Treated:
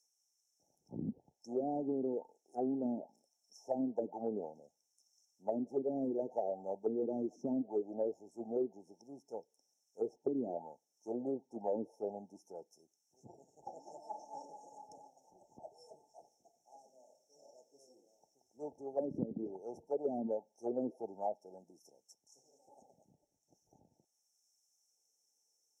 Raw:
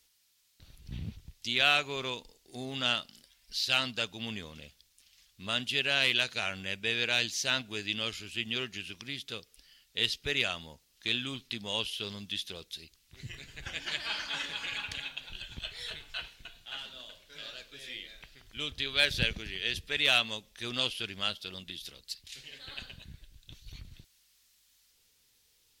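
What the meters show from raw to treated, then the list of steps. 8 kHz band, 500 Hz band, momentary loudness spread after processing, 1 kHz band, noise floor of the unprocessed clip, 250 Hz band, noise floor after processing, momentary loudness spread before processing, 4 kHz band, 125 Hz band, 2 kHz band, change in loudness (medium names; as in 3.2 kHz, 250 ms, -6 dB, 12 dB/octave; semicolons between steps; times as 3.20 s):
under -20 dB, +3.5 dB, 18 LU, -4.5 dB, -69 dBFS, +4.0 dB, -82 dBFS, 19 LU, under -40 dB, -11.0 dB, under -40 dB, -8.0 dB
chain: FFT band-reject 900–5300 Hz; auto-wah 260–4400 Hz, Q 3.2, down, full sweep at -34.5 dBFS; compression 3:1, threshold -52 dBFS, peak gain reduction 12.5 dB; three-band isolator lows -19 dB, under 150 Hz, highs -13 dB, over 2.1 kHz; trim +18 dB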